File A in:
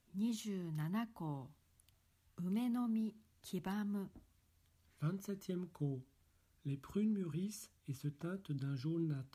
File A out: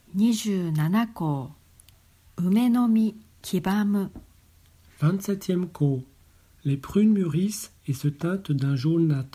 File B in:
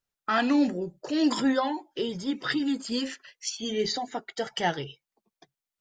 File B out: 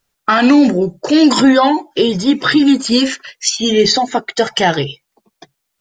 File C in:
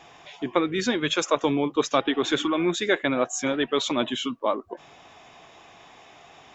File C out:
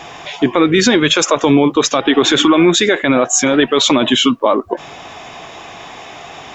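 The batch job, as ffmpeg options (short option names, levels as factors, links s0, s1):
-af "alimiter=level_in=7.94:limit=0.891:release=50:level=0:latency=1,volume=0.891"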